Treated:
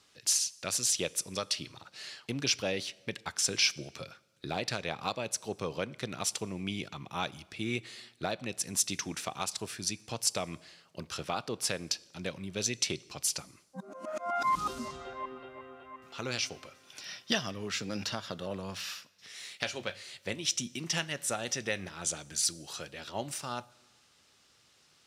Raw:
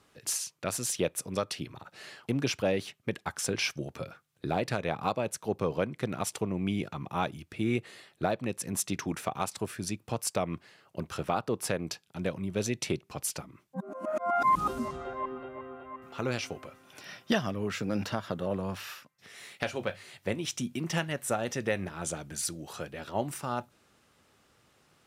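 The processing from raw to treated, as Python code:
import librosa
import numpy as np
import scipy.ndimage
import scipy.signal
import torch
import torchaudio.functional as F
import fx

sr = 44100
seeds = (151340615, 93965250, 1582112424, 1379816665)

y = fx.peak_eq(x, sr, hz=5000.0, db=14.0, octaves=2.2)
y = fx.rev_plate(y, sr, seeds[0], rt60_s=1.2, hf_ratio=0.85, predelay_ms=0, drr_db=20.0)
y = F.gain(torch.from_numpy(y), -6.5).numpy()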